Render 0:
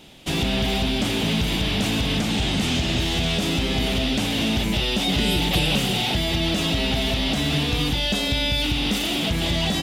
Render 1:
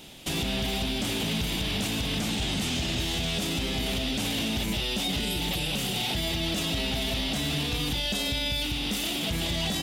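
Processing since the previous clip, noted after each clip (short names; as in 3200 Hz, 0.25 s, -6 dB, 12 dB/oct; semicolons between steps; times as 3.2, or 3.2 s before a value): high shelf 5900 Hz +8.5 dB; limiter -19.5 dBFS, peak gain reduction 11 dB; gain -1 dB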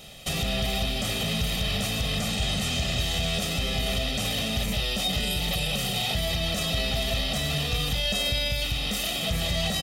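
comb 1.6 ms, depth 73%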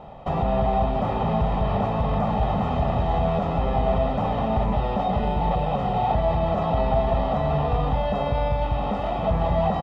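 synth low-pass 930 Hz, resonance Q 7; on a send: echo 0.671 s -9 dB; on the sum: gain +4.5 dB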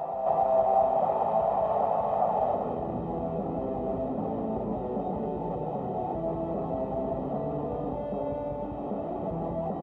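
CVSD 64 kbps; band-pass sweep 680 Hz -> 340 Hz, 2.42–2.92; reverse echo 0.288 s -6.5 dB; gain +2 dB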